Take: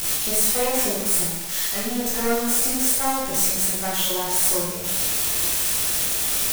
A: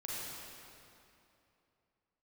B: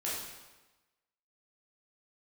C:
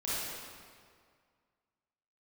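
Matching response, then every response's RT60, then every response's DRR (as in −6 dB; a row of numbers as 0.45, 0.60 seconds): B; 2.8, 1.1, 2.0 seconds; −6.5, −7.0, −10.0 decibels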